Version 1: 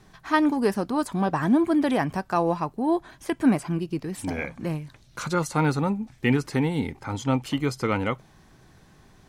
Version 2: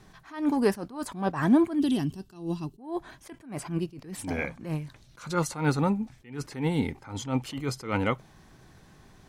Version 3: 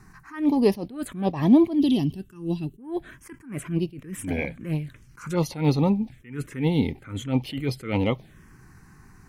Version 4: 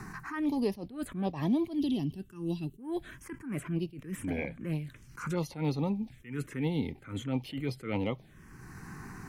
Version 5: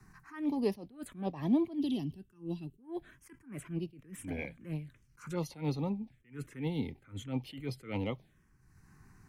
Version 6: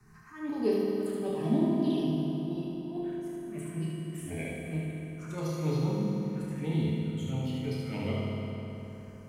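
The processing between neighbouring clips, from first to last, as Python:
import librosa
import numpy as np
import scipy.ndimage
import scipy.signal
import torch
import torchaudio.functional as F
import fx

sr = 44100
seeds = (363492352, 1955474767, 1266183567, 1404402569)

y1 = fx.spec_box(x, sr, start_s=1.79, length_s=1.0, low_hz=420.0, high_hz=2600.0, gain_db=-16)
y1 = fx.attack_slew(y1, sr, db_per_s=140.0)
y2 = fx.env_phaser(y1, sr, low_hz=560.0, high_hz=1500.0, full_db=-25.0)
y2 = y2 * 10.0 ** (5.0 / 20.0)
y3 = fx.band_squash(y2, sr, depth_pct=70)
y3 = y3 * 10.0 ** (-8.5 / 20.0)
y4 = fx.band_widen(y3, sr, depth_pct=100)
y4 = y4 * 10.0 ** (-4.0 / 20.0)
y5 = fx.room_early_taps(y4, sr, ms=(32, 75), db=(-6.0, -3.5))
y5 = fx.rev_fdn(y5, sr, rt60_s=3.9, lf_ratio=1.0, hf_ratio=0.7, size_ms=14.0, drr_db=-4.0)
y5 = y5 * 10.0 ** (-3.0 / 20.0)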